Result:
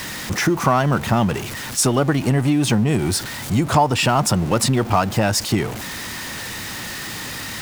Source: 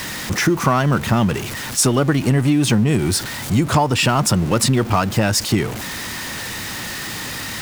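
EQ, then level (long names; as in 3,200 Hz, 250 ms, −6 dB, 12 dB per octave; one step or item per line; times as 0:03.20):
dynamic equaliser 760 Hz, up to +5 dB, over −33 dBFS, Q 1.8
−2.0 dB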